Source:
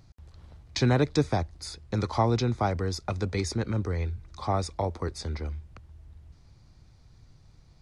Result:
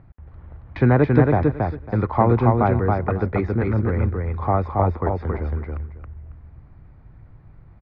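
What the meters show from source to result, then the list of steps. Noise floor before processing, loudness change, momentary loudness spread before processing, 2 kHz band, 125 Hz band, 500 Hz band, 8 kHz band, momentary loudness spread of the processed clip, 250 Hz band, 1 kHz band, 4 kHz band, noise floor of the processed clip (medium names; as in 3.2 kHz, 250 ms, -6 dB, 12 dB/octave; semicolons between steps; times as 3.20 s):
-57 dBFS, +8.5 dB, 11 LU, +7.0 dB, +9.0 dB, +9.0 dB, under -30 dB, 14 LU, +9.0 dB, +9.0 dB, under -15 dB, -48 dBFS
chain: low-pass 2 kHz 24 dB/octave; feedback delay 275 ms, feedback 18%, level -3 dB; trim +7 dB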